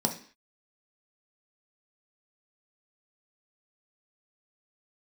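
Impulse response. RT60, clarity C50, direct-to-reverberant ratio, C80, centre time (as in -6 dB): 0.45 s, 11.0 dB, 2.5 dB, 16.0 dB, 13 ms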